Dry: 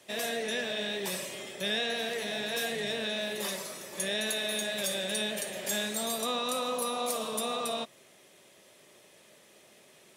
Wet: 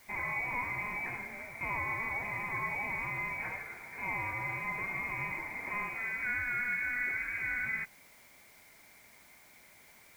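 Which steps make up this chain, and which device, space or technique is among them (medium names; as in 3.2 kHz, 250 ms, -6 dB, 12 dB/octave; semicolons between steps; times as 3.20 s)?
scrambled radio voice (band-pass 320–2600 Hz; frequency inversion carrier 2.7 kHz; white noise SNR 24 dB)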